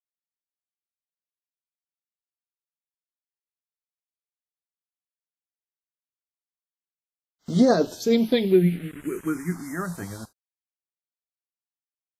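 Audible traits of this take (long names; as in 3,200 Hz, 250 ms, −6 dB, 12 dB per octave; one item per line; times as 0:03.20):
tremolo triangle 9.5 Hz, depth 50%
a quantiser's noise floor 8 bits, dither none
phaser sweep stages 4, 0.17 Hz, lowest notch 380–2,300 Hz
WMA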